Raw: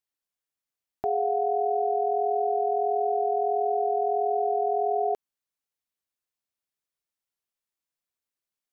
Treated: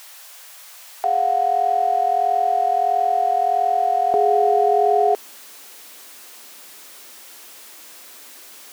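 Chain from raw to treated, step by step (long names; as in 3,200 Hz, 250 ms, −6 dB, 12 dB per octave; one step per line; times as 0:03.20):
converter with a step at zero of −42.5 dBFS
high-pass filter 590 Hz 24 dB per octave, from 0:04.14 240 Hz
level +8.5 dB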